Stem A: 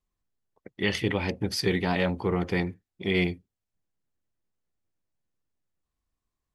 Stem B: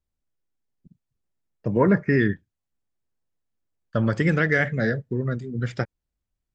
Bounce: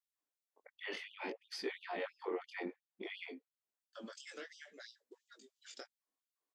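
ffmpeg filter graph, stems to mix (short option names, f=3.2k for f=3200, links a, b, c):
-filter_complex "[0:a]alimiter=limit=-23dB:level=0:latency=1:release=93,aemphasis=mode=reproduction:type=75fm,volume=-1dB,asplit=2[a][b];[1:a]acrossover=split=450[c][d];[d]acompressor=threshold=-26dB:ratio=5[e];[c][e]amix=inputs=2:normalize=0,aexciter=amount=4:drive=7.8:freq=2.9k,volume=-18.5dB[f];[b]apad=whole_len=293147[g];[f][g]sidechaincompress=threshold=-46dB:ratio=16:attack=6.9:release=390[h];[a][h]amix=inputs=2:normalize=0,flanger=delay=15.5:depth=7.1:speed=0.59,afftfilt=real='re*gte(b*sr/1024,210*pow(2800/210,0.5+0.5*sin(2*PI*2.9*pts/sr)))':imag='im*gte(b*sr/1024,210*pow(2800/210,0.5+0.5*sin(2*PI*2.9*pts/sr)))':win_size=1024:overlap=0.75"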